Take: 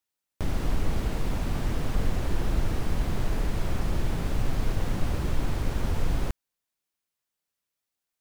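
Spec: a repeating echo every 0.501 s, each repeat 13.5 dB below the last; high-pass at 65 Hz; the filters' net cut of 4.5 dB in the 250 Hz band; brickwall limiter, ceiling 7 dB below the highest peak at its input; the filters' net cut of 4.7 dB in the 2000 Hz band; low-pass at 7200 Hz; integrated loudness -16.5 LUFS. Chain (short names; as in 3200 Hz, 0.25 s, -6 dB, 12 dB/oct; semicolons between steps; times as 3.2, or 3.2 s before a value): HPF 65 Hz; LPF 7200 Hz; bell 250 Hz -6.5 dB; bell 2000 Hz -6 dB; limiter -26 dBFS; feedback echo 0.501 s, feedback 21%, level -13.5 dB; gain +20 dB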